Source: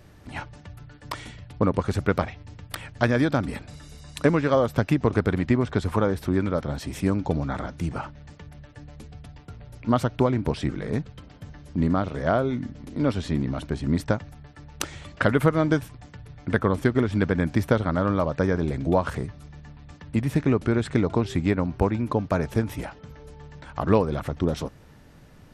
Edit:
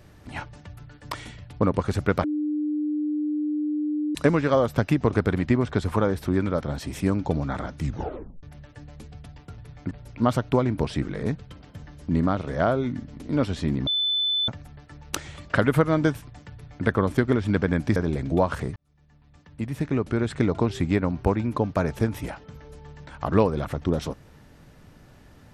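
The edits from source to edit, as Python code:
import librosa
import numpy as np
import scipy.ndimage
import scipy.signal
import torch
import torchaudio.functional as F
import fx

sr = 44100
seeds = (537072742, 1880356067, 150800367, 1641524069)

y = fx.edit(x, sr, fx.bleep(start_s=2.24, length_s=1.91, hz=300.0, db=-23.0),
    fx.tape_stop(start_s=7.77, length_s=0.66),
    fx.bleep(start_s=13.54, length_s=0.61, hz=3510.0, db=-21.0),
    fx.duplicate(start_s=16.19, length_s=0.33, to_s=9.58),
    fx.cut(start_s=17.63, length_s=0.88),
    fx.fade_in_span(start_s=19.31, length_s=1.76), tone=tone)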